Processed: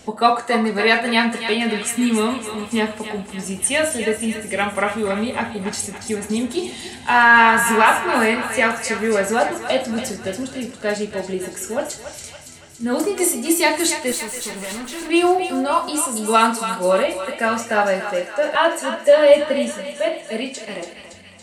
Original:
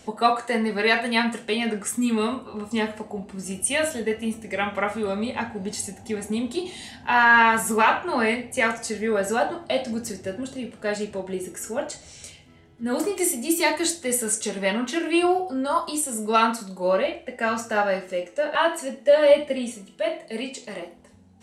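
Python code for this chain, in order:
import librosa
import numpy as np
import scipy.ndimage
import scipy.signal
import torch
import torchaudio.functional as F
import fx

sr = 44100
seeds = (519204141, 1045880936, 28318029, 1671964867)

y = fx.tube_stage(x, sr, drive_db=33.0, bias=0.55, at=(14.12, 15.1))
y = fx.echo_thinned(y, sr, ms=282, feedback_pct=65, hz=800.0, wet_db=-8)
y = y * 10.0 ** (4.5 / 20.0)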